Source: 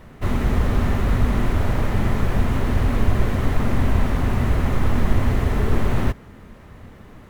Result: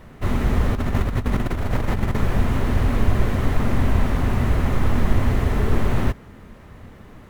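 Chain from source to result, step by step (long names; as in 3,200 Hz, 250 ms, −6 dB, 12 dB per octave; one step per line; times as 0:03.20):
0:00.75–0:02.17: compressor whose output falls as the input rises −20 dBFS, ratio −0.5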